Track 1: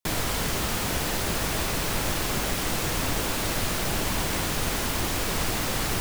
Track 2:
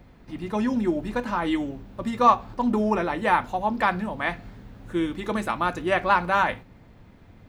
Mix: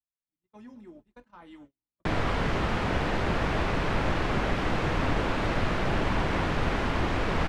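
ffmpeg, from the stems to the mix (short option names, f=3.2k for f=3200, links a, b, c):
-filter_complex "[0:a]lowpass=2.2k,adelay=2000,volume=2dB[a];[1:a]flanger=delay=0.4:depth=8.1:regen=83:speed=0.83:shape=sinusoidal,asoftclip=type=tanh:threshold=-19dB,volume=-18.5dB,asplit=2[b][c];[c]volume=-18dB,aecho=0:1:230|460|690|920|1150|1380:1|0.42|0.176|0.0741|0.0311|0.0131[d];[a][b][d]amix=inputs=3:normalize=0,agate=range=-38dB:threshold=-50dB:ratio=16:detection=peak"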